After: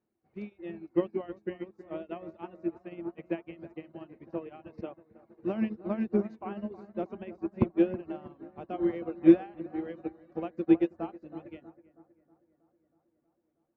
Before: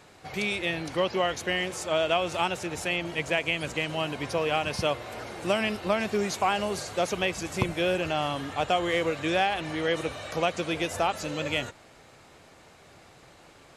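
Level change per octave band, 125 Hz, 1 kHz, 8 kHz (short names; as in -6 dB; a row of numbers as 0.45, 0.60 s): -6.0 dB, -15.5 dB, under -40 dB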